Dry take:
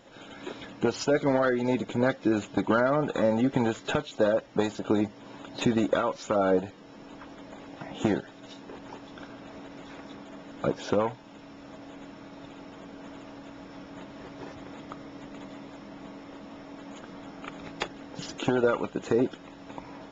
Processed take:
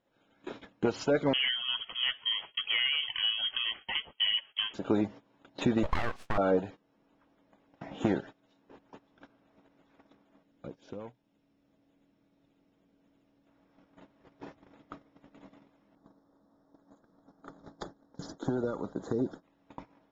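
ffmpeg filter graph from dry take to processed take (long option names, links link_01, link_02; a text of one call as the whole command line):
ffmpeg -i in.wav -filter_complex "[0:a]asettb=1/sr,asplit=3[link_01][link_02][link_03];[link_01]atrim=end=1.334[link_04];[link_02]atrim=start=1.33:end=4.74,asetpts=PTS-STARTPTS,afade=type=in:duration=0.004:curve=qsin,afade=type=out:start_time=3.406:duration=0.004:curve=qsin,highpass=280,volume=17dB,asoftclip=hard,volume=-17dB,lowpass=frequency=3000:width_type=q:width=0.5098,lowpass=frequency=3000:width_type=q:width=0.6013,lowpass=frequency=3000:width_type=q:width=0.9,lowpass=frequency=3000:width_type=q:width=2.563,afreqshift=-3500[link_05];[link_03]atrim=start=4.736[link_06];[link_04][link_05]acrossfade=duration=0.004:curve1=hsin:curve2=qsin[link_07];[link_07][link_06]acrossfade=duration=0.004:curve1=qsin:curve2=hsin,asettb=1/sr,asplit=3[link_08][link_09][link_10];[link_08]atrim=end=5.834[link_11];[link_09]atrim=start=5.83:end=6.38,asetpts=PTS-STARTPTS,afade=type=in:duration=0.004:curve=qsin,afade=type=out:start_time=0.546:duration=0.004:curve=qsin,lowpass=5300,aeval=exprs='abs(val(0))':channel_layout=same[link_12];[link_10]atrim=start=6.376[link_13];[link_11][link_12]acrossfade=duration=0.004:curve1=hsin:curve2=qsin[link_14];[link_14][link_13]acrossfade=duration=0.004:curve1=qsin:curve2=hsin,asettb=1/sr,asplit=3[link_15][link_16][link_17];[link_15]atrim=end=10.434[link_18];[link_16]atrim=start=10.43:end=13.47,asetpts=PTS-STARTPTS,afade=type=in:duration=0.004:curve=qsin,afade=type=out:start_time=3.036:duration=0.004:curve=qsin,equalizer=frequency=1100:width=0.67:gain=-8.5,acompressor=threshold=-38dB:ratio=3:attack=3.2:release=140:knee=1:detection=peak[link_19];[link_17]atrim=start=13.466[link_20];[link_18][link_19]acrossfade=duration=0.004:curve1=hsin:curve2=qsin[link_21];[link_21][link_20]acrossfade=duration=0.004:curve1=qsin:curve2=hsin,asettb=1/sr,asplit=3[link_22][link_23][link_24];[link_22]atrim=end=15.954[link_25];[link_23]atrim=start=15.95:end=19.43,asetpts=PTS-STARTPTS,afade=type=in:duration=0.004:curve=qsin,afade=type=out:start_time=3.476:duration=0.004:curve=qsin,equalizer=frequency=2200:width_type=o:width=0.53:gain=-14.5,acrossover=split=310|3000[link_26][link_27][link_28];[link_27]acompressor=threshold=-34dB:ratio=3:attack=3.2:release=140:knee=2.83:detection=peak[link_29];[link_26][link_29][link_28]amix=inputs=3:normalize=0,asuperstop=centerf=2700:order=4:qfactor=1.6[link_30];[link_24]atrim=start=19.426[link_31];[link_25][link_30]acrossfade=duration=0.004:curve1=hsin:curve2=qsin[link_32];[link_32][link_31]acrossfade=duration=0.004:curve1=qsin:curve2=hsin,agate=range=-20dB:threshold=-40dB:ratio=16:detection=peak,highshelf=frequency=5000:gain=-9.5,volume=-2.5dB" out.wav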